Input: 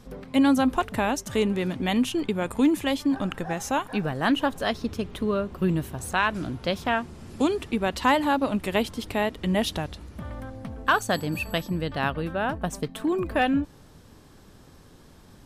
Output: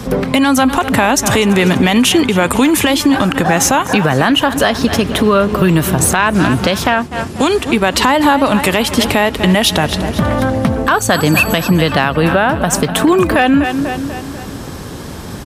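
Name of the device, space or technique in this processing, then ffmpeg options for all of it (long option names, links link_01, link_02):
mastering chain: -filter_complex "[0:a]highpass=52,equalizer=frequency=4000:width_type=o:width=0.77:gain=-1.5,aecho=1:1:246|492|738|984:0.126|0.0642|0.0327|0.0167,acrossover=split=100|770[link_01][link_02][link_03];[link_01]acompressor=threshold=-52dB:ratio=4[link_04];[link_02]acompressor=threshold=-32dB:ratio=4[link_05];[link_03]acompressor=threshold=-28dB:ratio=4[link_06];[link_04][link_05][link_06]amix=inputs=3:normalize=0,acompressor=threshold=-32dB:ratio=2.5,asoftclip=type=tanh:threshold=-19.5dB,alimiter=level_in=26dB:limit=-1dB:release=50:level=0:latency=1,asplit=3[link_07][link_08][link_09];[link_07]afade=type=out:start_time=6.92:duration=0.02[link_10];[link_08]agate=range=-33dB:threshold=-9dB:ratio=3:detection=peak,afade=type=in:start_time=6.92:duration=0.02,afade=type=out:start_time=7.81:duration=0.02[link_11];[link_09]afade=type=in:start_time=7.81:duration=0.02[link_12];[link_10][link_11][link_12]amix=inputs=3:normalize=0,volume=-1dB"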